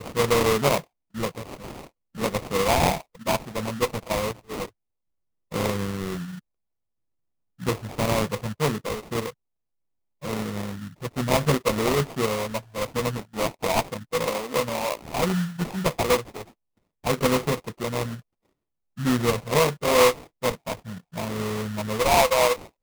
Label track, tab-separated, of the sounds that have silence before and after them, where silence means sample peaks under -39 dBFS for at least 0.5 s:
5.520000	6.390000	sound
7.600000	9.300000	sound
10.230000	16.430000	sound
17.040000	18.200000	sound